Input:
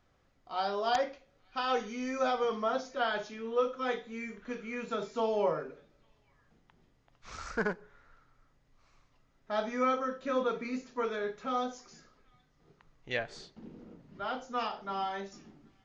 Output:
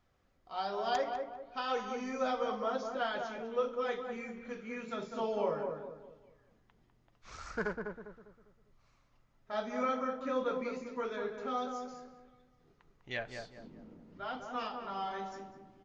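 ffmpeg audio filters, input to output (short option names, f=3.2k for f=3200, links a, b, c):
-filter_complex "[0:a]flanger=delay=0.9:depth=3.2:regen=-63:speed=1.6:shape=sinusoidal,asplit=2[a][b];[b]adelay=200,lowpass=f=1.2k:p=1,volume=-4dB,asplit=2[c][d];[d]adelay=200,lowpass=f=1.2k:p=1,volume=0.41,asplit=2[e][f];[f]adelay=200,lowpass=f=1.2k:p=1,volume=0.41,asplit=2[g][h];[h]adelay=200,lowpass=f=1.2k:p=1,volume=0.41,asplit=2[i][j];[j]adelay=200,lowpass=f=1.2k:p=1,volume=0.41[k];[a][c][e][g][i][k]amix=inputs=6:normalize=0"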